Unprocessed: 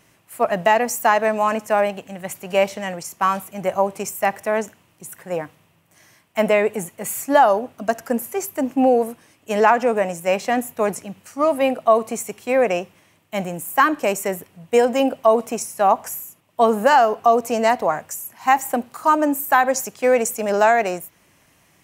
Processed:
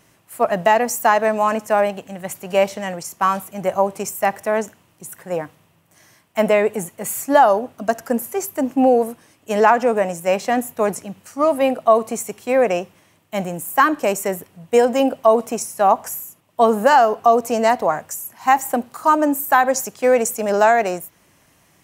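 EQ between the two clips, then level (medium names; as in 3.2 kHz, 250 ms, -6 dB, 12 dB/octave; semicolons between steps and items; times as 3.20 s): peaking EQ 2.4 kHz -3 dB 0.77 oct; +1.5 dB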